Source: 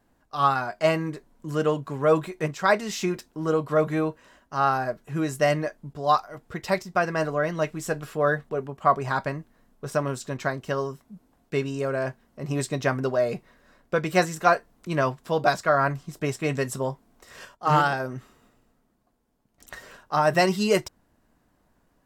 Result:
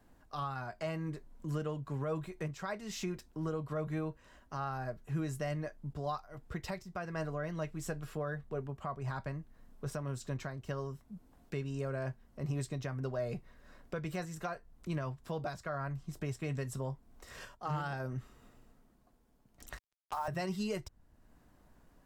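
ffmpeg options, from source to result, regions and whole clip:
-filter_complex "[0:a]asettb=1/sr,asplit=3[s0][s1][s2];[s0]atrim=end=19.774[s3];[s1]atrim=start=19.77:end=20.28,asetpts=PTS-STARTPTS,afade=t=in:d=0.004:c=qsin,afade=t=out:st=0.506:d=0.004:c=qsin,highpass=580,equalizer=f=920:t=o:w=0.69:g=11,acrusher=bits=4:mix=0:aa=0.5[s4];[s2]atrim=start=20.276[s5];[s3][s4]acrossfade=d=0.004:c1=hsin:c2=qsin[s6];[s6][s5]acrossfade=d=0.004:c1=qsin:c2=hsin,acrossover=split=120[s7][s8];[s8]acompressor=threshold=0.00158:ratio=1.5[s9];[s7][s9]amix=inputs=2:normalize=0,lowshelf=f=94:g=7,alimiter=level_in=1.33:limit=0.0631:level=0:latency=1:release=290,volume=0.75"

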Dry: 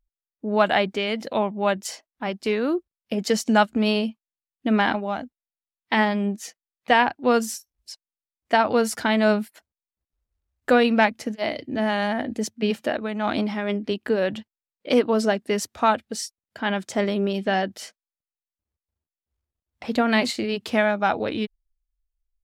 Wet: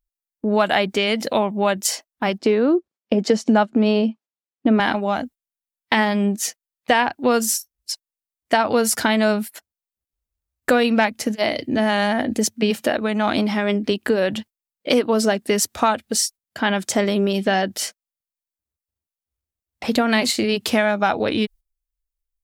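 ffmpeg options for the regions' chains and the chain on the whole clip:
-filter_complex "[0:a]asettb=1/sr,asplit=3[s0][s1][s2];[s0]atrim=end=2.384[s3];[s1]atrim=start=2.38:end=4.8,asetpts=PTS-STARTPTS,afade=t=in:d=0.004:c=qsin,afade=t=out:st=2.416:d=0.004:c=qsin,highpass=200,lowpass=5800,tiltshelf=f=1200:g=6.5[s4];[s2]atrim=start=4.796[s5];[s3][s4]acrossfade=d=0.004:c1=hsin:c2=qsin[s6];[s6][s5]acrossfade=d=0.004:c1=qsin:c2=hsin,agate=range=0.224:threshold=0.00631:ratio=16:detection=peak,highshelf=f=6400:g=10.5,acompressor=threshold=0.0562:ratio=2.5,volume=2.51"

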